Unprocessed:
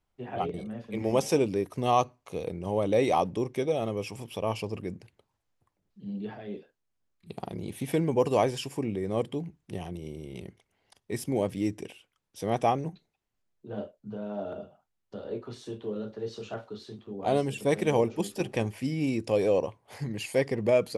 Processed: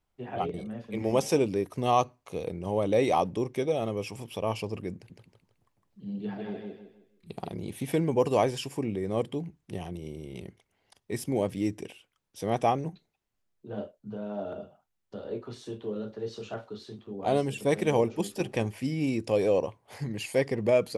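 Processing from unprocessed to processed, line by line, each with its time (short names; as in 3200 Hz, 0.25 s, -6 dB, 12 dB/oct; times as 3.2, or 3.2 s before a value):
4.94–7.5 feedback echo 0.158 s, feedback 33%, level -3 dB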